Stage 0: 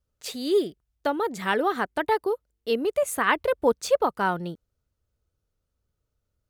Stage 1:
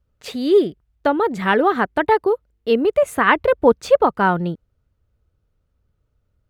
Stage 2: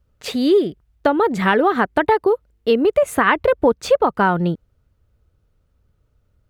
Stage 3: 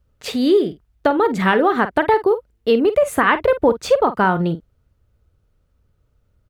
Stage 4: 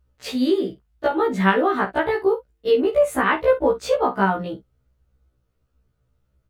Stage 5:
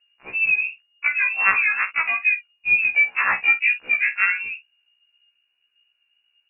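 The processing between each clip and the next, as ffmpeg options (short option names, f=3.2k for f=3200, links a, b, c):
-af "bass=f=250:g=4,treble=f=4k:g=-12,volume=7.5dB"
-af "acompressor=threshold=-18dB:ratio=3,volume=5dB"
-filter_complex "[0:a]asplit=2[a][b];[b]adelay=48,volume=-12.5dB[c];[a][c]amix=inputs=2:normalize=0"
-af "afftfilt=real='re*1.73*eq(mod(b,3),0)':imag='im*1.73*eq(mod(b,3),0)':win_size=2048:overlap=0.75,volume=-1.5dB"
-af "lowpass=f=2.5k:t=q:w=0.5098,lowpass=f=2.5k:t=q:w=0.6013,lowpass=f=2.5k:t=q:w=0.9,lowpass=f=2.5k:t=q:w=2.563,afreqshift=-2900,volume=-1dB"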